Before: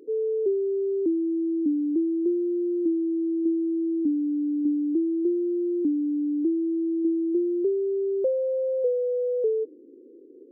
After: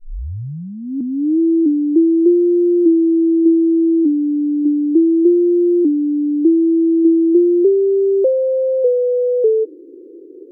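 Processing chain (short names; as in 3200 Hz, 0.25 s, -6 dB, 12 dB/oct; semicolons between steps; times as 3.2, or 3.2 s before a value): tape start at the beginning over 1.39 s; resonant low shelf 270 Hz -6 dB, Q 3; gain +7.5 dB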